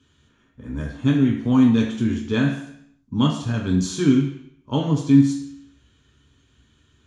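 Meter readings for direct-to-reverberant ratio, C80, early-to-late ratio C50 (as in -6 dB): -1.0 dB, 8.5 dB, 5.5 dB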